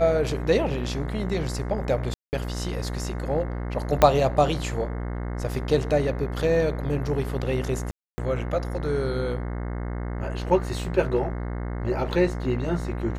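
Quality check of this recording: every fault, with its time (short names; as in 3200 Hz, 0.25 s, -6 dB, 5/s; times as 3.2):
buzz 60 Hz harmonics 36 -30 dBFS
2.14–2.33 gap 0.189 s
4.02 pop -3 dBFS
7.91–8.18 gap 0.27 s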